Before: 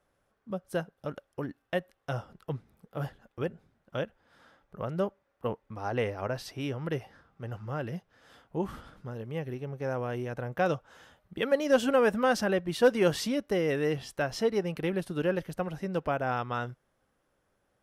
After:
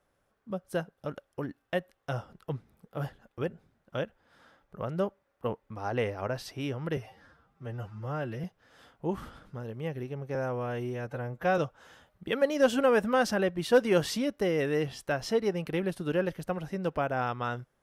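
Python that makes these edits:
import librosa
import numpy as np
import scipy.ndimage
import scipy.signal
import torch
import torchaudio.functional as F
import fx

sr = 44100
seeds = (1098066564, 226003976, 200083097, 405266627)

y = fx.edit(x, sr, fx.stretch_span(start_s=6.97, length_s=0.98, factor=1.5),
    fx.stretch_span(start_s=9.86, length_s=0.82, factor=1.5), tone=tone)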